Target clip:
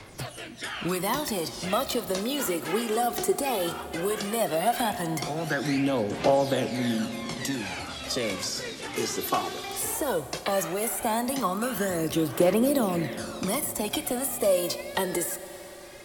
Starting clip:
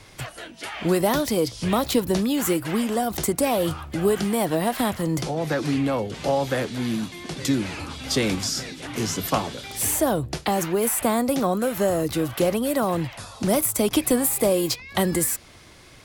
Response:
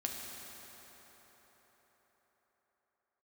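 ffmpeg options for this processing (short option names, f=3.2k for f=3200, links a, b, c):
-filter_complex "[0:a]acrossover=split=170|1300[a][b][c];[a]acompressor=threshold=-42dB:ratio=4[d];[b]acompressor=threshold=-23dB:ratio=4[e];[c]acompressor=threshold=-30dB:ratio=4[f];[d][e][f]amix=inputs=3:normalize=0,aphaser=in_gain=1:out_gain=1:delay=2.7:decay=0.57:speed=0.16:type=triangular,lowshelf=f=120:g=-7.5,asplit=2[g][h];[1:a]atrim=start_sample=2205[i];[h][i]afir=irnorm=-1:irlink=0,volume=-8.5dB[j];[g][j]amix=inputs=2:normalize=0,volume=-4dB"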